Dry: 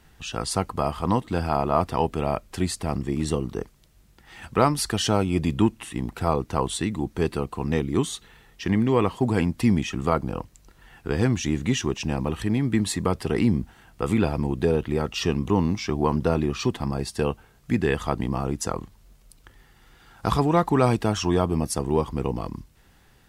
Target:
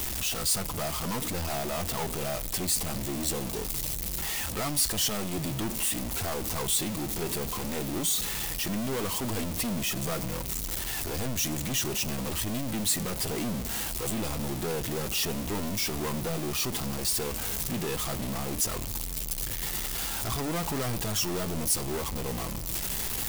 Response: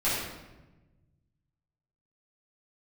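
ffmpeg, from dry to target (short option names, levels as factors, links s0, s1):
-filter_complex "[0:a]aeval=exprs='val(0)+0.5*0.1*sgn(val(0))':c=same,equalizer=f=1500:w=2.5:g=-4.5,asoftclip=type=hard:threshold=0.119,flanger=delay=2.7:depth=3.8:regen=-62:speed=0.64:shape=triangular,crystalizer=i=2:c=0,asplit=2[s0][s1];[1:a]atrim=start_sample=2205[s2];[s1][s2]afir=irnorm=-1:irlink=0,volume=0.0316[s3];[s0][s3]amix=inputs=2:normalize=0,volume=0.447"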